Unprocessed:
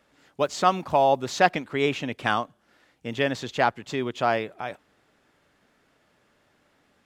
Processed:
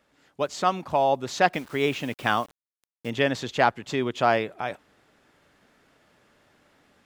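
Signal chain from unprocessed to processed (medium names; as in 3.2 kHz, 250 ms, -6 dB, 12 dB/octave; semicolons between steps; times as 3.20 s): gain riding 2 s; 1.53–3.10 s: word length cut 8-bit, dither none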